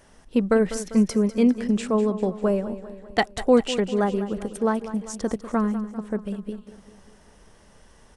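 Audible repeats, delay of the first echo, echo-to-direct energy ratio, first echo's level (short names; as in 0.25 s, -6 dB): 5, 0.198 s, -12.0 dB, -13.5 dB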